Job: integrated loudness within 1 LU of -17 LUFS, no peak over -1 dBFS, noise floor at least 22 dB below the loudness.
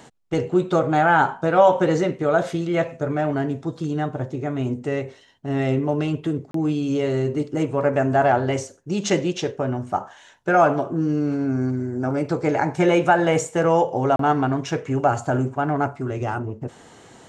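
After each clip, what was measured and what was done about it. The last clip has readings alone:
dropouts 2; longest dropout 33 ms; loudness -22.0 LUFS; peak level -5.0 dBFS; loudness target -17.0 LUFS
-> interpolate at 6.51/14.16 s, 33 ms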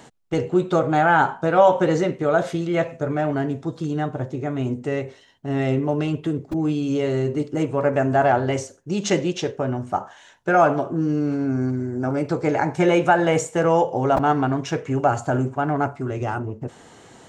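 dropouts 0; loudness -22.0 LUFS; peak level -5.0 dBFS; loudness target -17.0 LUFS
-> trim +5 dB; peak limiter -1 dBFS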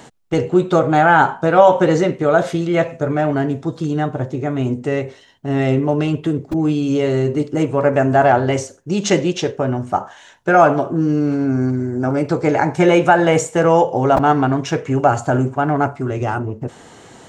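loudness -17.0 LUFS; peak level -1.0 dBFS; noise floor -45 dBFS

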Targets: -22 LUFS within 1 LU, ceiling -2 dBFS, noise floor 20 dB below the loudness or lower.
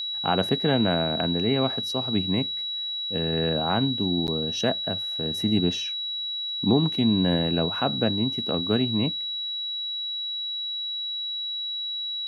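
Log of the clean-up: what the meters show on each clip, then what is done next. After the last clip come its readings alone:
dropouts 1; longest dropout 9.3 ms; steady tone 3.9 kHz; tone level -28 dBFS; loudness -25.0 LUFS; peak level -7.5 dBFS; loudness target -22.0 LUFS
-> interpolate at 4.27 s, 9.3 ms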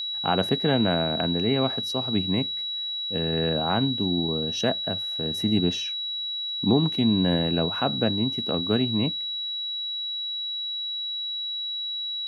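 dropouts 0; steady tone 3.9 kHz; tone level -28 dBFS
-> band-stop 3.9 kHz, Q 30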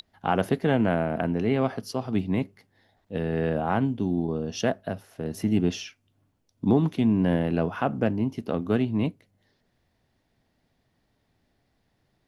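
steady tone not found; loudness -26.5 LUFS; peak level -8.0 dBFS; loudness target -22.0 LUFS
-> trim +4.5 dB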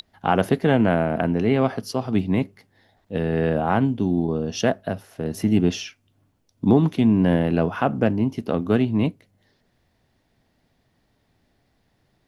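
loudness -22.0 LUFS; peak level -3.5 dBFS; noise floor -68 dBFS

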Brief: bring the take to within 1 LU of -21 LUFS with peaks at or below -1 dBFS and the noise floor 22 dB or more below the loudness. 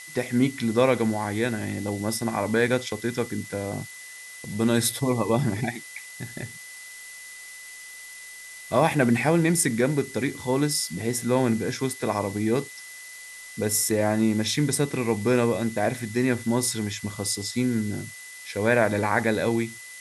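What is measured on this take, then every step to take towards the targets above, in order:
steady tone 2 kHz; tone level -42 dBFS; noise floor -42 dBFS; noise floor target -47 dBFS; loudness -25.0 LUFS; peak level -6.0 dBFS; loudness target -21.0 LUFS
-> band-stop 2 kHz, Q 30; noise reduction 6 dB, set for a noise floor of -42 dBFS; trim +4 dB

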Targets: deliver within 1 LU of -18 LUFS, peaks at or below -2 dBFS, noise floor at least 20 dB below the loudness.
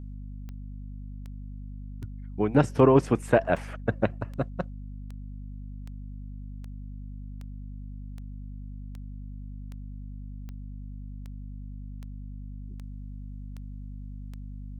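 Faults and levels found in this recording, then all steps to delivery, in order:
clicks found 19; hum 50 Hz; highest harmonic 250 Hz; hum level -36 dBFS; loudness -25.5 LUFS; peak level -6.0 dBFS; loudness target -18.0 LUFS
-> de-click; de-hum 50 Hz, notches 5; trim +7.5 dB; peak limiter -2 dBFS

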